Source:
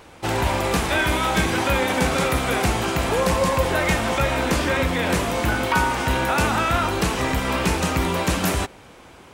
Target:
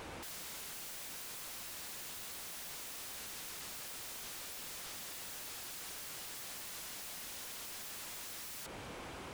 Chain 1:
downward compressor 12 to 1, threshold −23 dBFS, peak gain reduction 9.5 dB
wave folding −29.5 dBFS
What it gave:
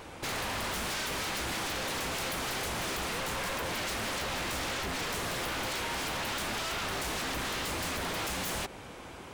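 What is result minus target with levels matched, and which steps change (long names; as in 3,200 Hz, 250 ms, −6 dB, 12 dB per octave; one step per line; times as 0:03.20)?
wave folding: distortion −30 dB
change: wave folding −41.5 dBFS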